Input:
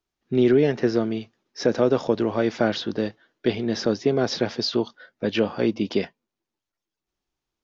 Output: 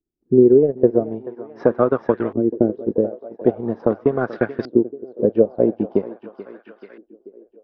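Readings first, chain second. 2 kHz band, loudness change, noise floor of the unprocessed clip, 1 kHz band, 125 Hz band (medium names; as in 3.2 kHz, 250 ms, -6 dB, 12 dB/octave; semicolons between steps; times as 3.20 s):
-3.0 dB, +4.5 dB, under -85 dBFS, +2.5 dB, +1.5 dB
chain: transient shaper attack +6 dB, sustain -11 dB; thinning echo 434 ms, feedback 66%, high-pass 270 Hz, level -14 dB; LFO low-pass saw up 0.43 Hz 300–1800 Hz; trim -1.5 dB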